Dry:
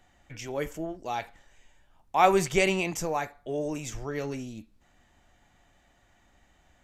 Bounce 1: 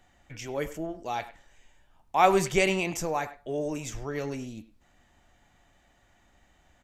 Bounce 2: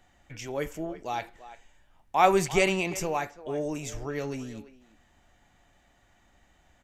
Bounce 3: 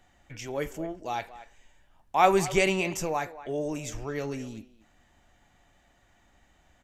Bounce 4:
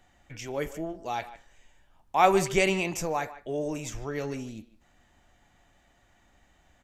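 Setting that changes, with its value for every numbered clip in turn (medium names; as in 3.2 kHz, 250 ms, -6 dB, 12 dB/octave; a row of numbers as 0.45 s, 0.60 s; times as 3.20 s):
speakerphone echo, time: 100 ms, 340 ms, 230 ms, 150 ms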